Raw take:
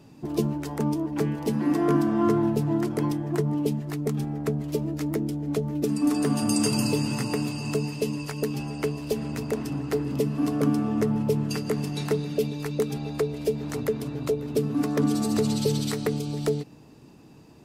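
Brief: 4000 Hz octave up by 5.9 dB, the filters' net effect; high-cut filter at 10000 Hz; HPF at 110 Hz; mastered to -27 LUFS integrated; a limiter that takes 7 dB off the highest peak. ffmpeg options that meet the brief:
-af "highpass=110,lowpass=10k,equalizer=f=4k:t=o:g=7.5,volume=1dB,alimiter=limit=-16.5dB:level=0:latency=1"

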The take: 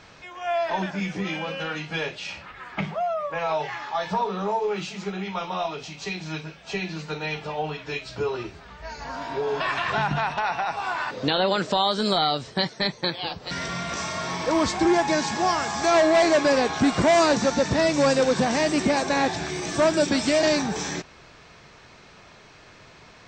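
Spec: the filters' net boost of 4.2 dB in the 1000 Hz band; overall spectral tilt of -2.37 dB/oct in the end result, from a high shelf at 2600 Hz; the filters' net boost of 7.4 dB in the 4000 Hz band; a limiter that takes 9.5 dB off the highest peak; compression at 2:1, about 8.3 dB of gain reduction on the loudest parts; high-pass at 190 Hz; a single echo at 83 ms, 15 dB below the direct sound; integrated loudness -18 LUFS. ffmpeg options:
-af "highpass=190,equalizer=f=1k:t=o:g=4.5,highshelf=f=2.6k:g=5.5,equalizer=f=4k:t=o:g=4,acompressor=threshold=-27dB:ratio=2,alimiter=limit=-18.5dB:level=0:latency=1,aecho=1:1:83:0.178,volume=10.5dB"

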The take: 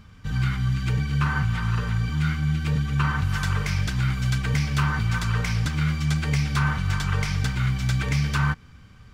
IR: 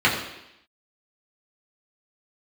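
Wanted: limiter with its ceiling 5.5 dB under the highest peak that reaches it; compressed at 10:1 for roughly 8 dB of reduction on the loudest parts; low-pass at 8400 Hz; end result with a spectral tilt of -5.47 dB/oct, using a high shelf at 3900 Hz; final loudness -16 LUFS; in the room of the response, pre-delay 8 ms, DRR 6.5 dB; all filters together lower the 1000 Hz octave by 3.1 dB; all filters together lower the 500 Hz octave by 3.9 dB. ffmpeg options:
-filter_complex "[0:a]lowpass=8.4k,equalizer=f=500:t=o:g=-4,equalizer=f=1k:t=o:g=-3.5,highshelf=f=3.9k:g=3.5,acompressor=threshold=-27dB:ratio=10,alimiter=level_in=0.5dB:limit=-24dB:level=0:latency=1,volume=-0.5dB,asplit=2[a][b];[1:a]atrim=start_sample=2205,adelay=8[c];[b][c]afir=irnorm=-1:irlink=0,volume=-26.5dB[d];[a][d]amix=inputs=2:normalize=0,volume=16.5dB"

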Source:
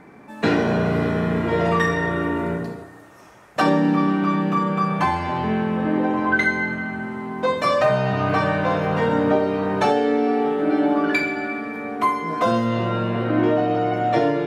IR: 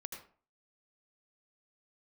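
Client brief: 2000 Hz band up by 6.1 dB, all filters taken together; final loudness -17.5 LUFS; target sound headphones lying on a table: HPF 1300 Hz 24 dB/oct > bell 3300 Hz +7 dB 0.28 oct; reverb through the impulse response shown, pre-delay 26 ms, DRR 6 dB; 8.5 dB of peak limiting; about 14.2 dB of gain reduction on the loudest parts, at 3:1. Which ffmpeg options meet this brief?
-filter_complex "[0:a]equalizer=f=2k:t=o:g=8,acompressor=threshold=-30dB:ratio=3,alimiter=limit=-23dB:level=0:latency=1,asplit=2[a][b];[1:a]atrim=start_sample=2205,adelay=26[c];[b][c]afir=irnorm=-1:irlink=0,volume=-3.5dB[d];[a][d]amix=inputs=2:normalize=0,highpass=f=1.3k:w=0.5412,highpass=f=1.3k:w=1.3066,equalizer=f=3.3k:t=o:w=0.28:g=7,volume=18dB"

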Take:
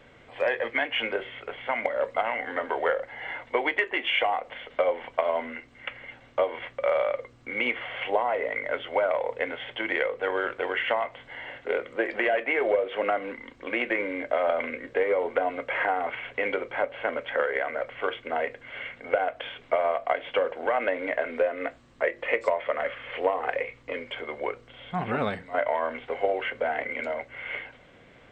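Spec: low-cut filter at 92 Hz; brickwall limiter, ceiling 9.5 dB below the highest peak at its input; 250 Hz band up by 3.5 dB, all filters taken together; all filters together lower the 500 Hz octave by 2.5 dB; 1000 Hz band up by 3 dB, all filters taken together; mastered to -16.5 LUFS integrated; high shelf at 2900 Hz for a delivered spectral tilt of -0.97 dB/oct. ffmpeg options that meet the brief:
-af "highpass=92,equalizer=f=250:t=o:g=6.5,equalizer=f=500:t=o:g=-6.5,equalizer=f=1k:t=o:g=6,highshelf=f=2.9k:g=4,volume=13dB,alimiter=limit=-3dB:level=0:latency=1"

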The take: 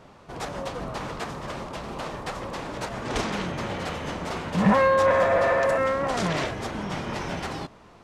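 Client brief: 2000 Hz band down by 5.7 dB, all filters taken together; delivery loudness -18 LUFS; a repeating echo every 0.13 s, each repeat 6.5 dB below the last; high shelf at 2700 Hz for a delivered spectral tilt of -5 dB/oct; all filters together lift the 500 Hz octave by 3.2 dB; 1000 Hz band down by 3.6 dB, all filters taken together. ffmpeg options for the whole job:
-af "equalizer=f=500:t=o:g=5,equalizer=f=1k:t=o:g=-5,equalizer=f=2k:t=o:g=-8.5,highshelf=f=2.7k:g=7,aecho=1:1:130|260|390|520|650|780:0.473|0.222|0.105|0.0491|0.0231|0.0109,volume=7dB"

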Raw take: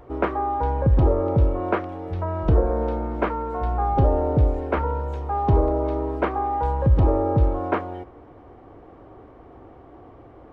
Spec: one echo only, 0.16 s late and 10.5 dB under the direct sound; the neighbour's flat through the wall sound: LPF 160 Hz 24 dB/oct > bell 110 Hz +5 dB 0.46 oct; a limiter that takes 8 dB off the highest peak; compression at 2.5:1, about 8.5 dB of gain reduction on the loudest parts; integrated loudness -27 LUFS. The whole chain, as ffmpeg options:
-af "acompressor=threshold=-26dB:ratio=2.5,alimiter=limit=-20.5dB:level=0:latency=1,lowpass=f=160:w=0.5412,lowpass=f=160:w=1.3066,equalizer=f=110:t=o:w=0.46:g=5,aecho=1:1:160:0.299,volume=6.5dB"

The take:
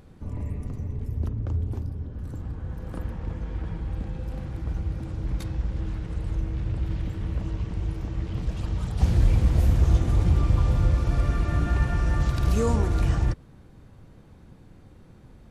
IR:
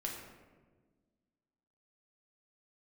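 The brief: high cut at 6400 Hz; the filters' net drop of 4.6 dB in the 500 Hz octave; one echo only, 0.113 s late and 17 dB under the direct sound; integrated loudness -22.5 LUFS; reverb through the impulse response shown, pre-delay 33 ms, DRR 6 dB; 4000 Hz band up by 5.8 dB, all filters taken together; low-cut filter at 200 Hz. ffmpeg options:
-filter_complex "[0:a]highpass=200,lowpass=6.4k,equalizer=f=500:t=o:g=-5.5,equalizer=f=4k:t=o:g=8,aecho=1:1:113:0.141,asplit=2[a][b];[1:a]atrim=start_sample=2205,adelay=33[c];[b][c]afir=irnorm=-1:irlink=0,volume=-7dB[d];[a][d]amix=inputs=2:normalize=0,volume=13dB"

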